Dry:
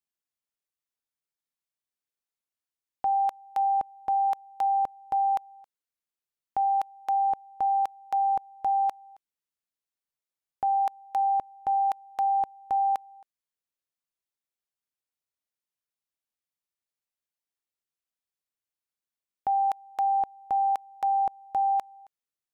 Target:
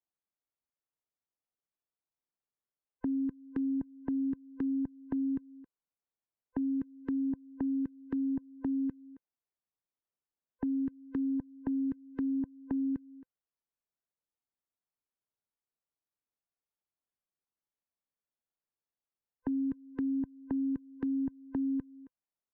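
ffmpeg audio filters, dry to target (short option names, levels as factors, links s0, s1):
-filter_complex "[0:a]afftfilt=real='real(if(lt(b,1008),b+24*(1-2*mod(floor(b/24),2)),b),0)':imag='imag(if(lt(b,1008),b+24*(1-2*mod(floor(b/24),2)),b),0)':win_size=2048:overlap=0.75,lowpass=1200,acrossover=split=190[s0][s1];[s1]acompressor=threshold=0.0158:ratio=6[s2];[s0][s2]amix=inputs=2:normalize=0"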